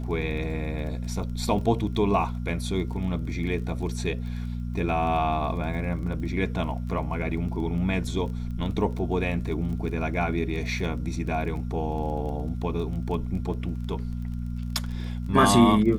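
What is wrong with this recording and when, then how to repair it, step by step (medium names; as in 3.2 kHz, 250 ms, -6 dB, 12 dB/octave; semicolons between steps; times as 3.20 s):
crackle 21 per s -35 dBFS
hum 60 Hz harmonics 4 -31 dBFS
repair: de-click; de-hum 60 Hz, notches 4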